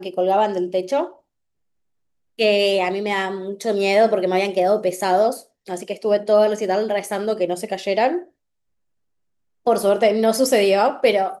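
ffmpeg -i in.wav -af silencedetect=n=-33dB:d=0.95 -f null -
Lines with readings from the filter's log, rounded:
silence_start: 1.09
silence_end: 2.39 | silence_duration: 1.30
silence_start: 8.23
silence_end: 9.67 | silence_duration: 1.44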